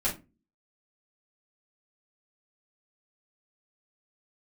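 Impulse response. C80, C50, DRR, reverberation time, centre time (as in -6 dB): 19.0 dB, 11.0 dB, -7.5 dB, 0.25 s, 20 ms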